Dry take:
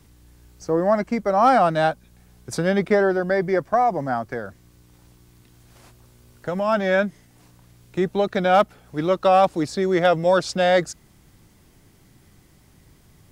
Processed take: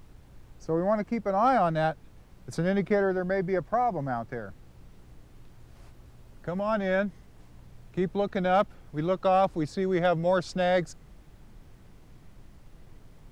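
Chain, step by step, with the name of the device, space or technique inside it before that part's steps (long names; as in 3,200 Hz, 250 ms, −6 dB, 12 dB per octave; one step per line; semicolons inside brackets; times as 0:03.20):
car interior (parametric band 140 Hz +5.5 dB 0.88 octaves; high-shelf EQ 4,700 Hz −7 dB; brown noise bed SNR 20 dB)
level −7 dB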